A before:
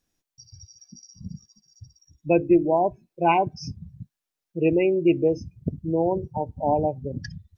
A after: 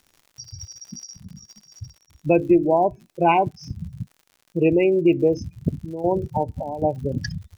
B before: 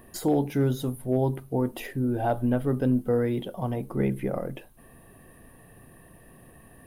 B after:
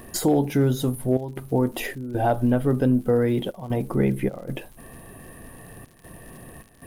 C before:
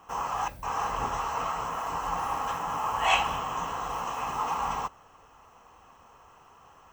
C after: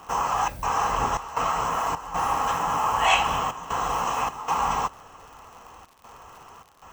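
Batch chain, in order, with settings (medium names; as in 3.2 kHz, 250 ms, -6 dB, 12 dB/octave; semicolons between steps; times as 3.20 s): peaking EQ 7.3 kHz +2.5 dB 0.77 oct; compression 1.5:1, threshold -33 dBFS; trance gate "xxxxxx.xxx.x" 77 bpm -12 dB; crackle 88 per s -48 dBFS; trim +8.5 dB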